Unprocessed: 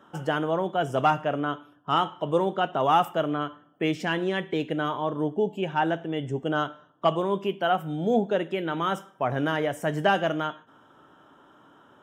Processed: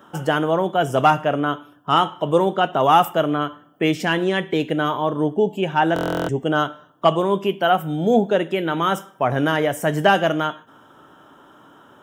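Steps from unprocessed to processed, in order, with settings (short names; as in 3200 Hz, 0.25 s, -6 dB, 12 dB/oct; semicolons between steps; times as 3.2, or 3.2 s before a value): high shelf 10000 Hz +11 dB; stuck buffer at 5.94, samples 1024, times 14; gain +6.5 dB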